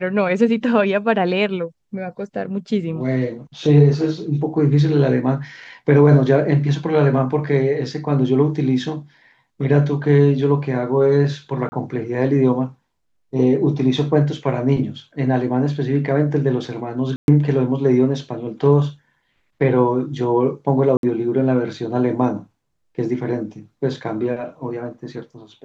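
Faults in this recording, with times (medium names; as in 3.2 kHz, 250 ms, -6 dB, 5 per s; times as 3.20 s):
11.69–11.72 s: dropout 30 ms
17.16–17.28 s: dropout 121 ms
20.97–21.03 s: dropout 62 ms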